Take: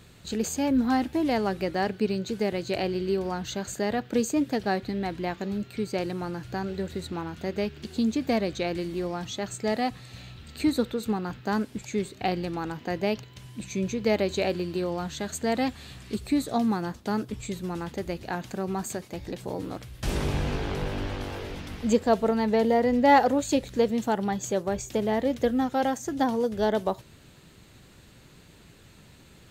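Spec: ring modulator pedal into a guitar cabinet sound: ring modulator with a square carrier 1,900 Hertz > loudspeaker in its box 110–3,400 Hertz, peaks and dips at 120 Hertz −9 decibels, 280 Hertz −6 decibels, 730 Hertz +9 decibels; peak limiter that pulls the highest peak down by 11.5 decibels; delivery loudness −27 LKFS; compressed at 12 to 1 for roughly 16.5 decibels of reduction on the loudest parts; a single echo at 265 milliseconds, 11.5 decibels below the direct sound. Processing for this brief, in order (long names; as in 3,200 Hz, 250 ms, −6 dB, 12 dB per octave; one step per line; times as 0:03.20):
downward compressor 12 to 1, threshold −31 dBFS
brickwall limiter −29.5 dBFS
single-tap delay 265 ms −11.5 dB
ring modulator with a square carrier 1,900 Hz
loudspeaker in its box 110–3,400 Hz, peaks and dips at 120 Hz −9 dB, 280 Hz −6 dB, 730 Hz +9 dB
level +10 dB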